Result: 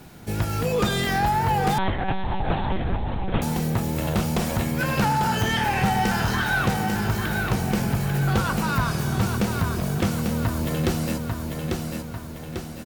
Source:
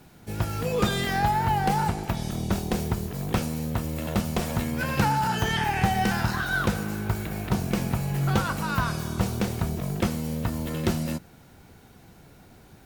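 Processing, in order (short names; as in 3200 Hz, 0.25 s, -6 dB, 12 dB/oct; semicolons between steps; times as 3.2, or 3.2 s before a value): feedback echo 0.845 s, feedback 45%, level -7 dB; in parallel at +1.5 dB: compressor, threshold -30 dBFS, peak gain reduction 13.5 dB; on the sum: soft clip -13 dBFS, distortion -18 dB; 1.78–3.42 monotone LPC vocoder at 8 kHz 190 Hz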